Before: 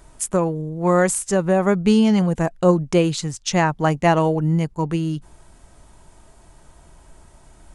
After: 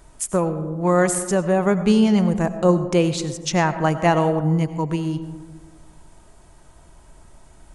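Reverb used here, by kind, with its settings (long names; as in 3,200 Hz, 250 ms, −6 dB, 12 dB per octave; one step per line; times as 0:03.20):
comb and all-pass reverb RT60 1.5 s, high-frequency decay 0.3×, pre-delay 55 ms, DRR 11 dB
level −1 dB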